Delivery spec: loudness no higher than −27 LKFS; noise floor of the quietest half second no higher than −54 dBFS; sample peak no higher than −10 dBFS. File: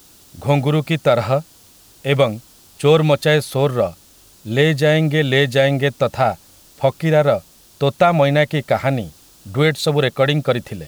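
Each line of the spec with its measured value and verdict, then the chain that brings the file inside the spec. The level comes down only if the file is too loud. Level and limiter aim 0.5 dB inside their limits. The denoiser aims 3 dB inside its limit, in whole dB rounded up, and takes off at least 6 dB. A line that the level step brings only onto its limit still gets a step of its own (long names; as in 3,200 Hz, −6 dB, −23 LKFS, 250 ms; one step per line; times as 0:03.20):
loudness −17.5 LKFS: out of spec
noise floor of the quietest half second −48 dBFS: out of spec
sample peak −3.0 dBFS: out of spec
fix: level −10 dB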